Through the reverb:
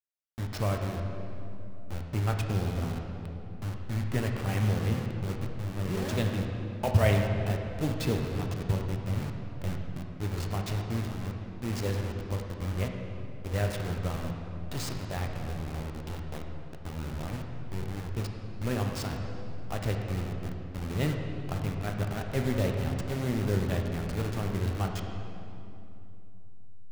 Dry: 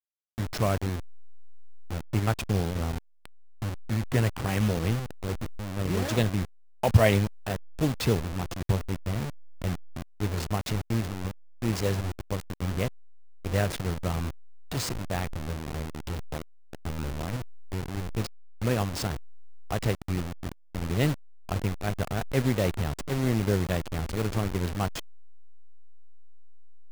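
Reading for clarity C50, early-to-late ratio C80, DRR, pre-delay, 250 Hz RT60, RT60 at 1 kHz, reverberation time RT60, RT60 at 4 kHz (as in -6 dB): 3.5 dB, 4.5 dB, 2.0 dB, 3 ms, 3.4 s, 2.6 s, 2.9 s, 2.0 s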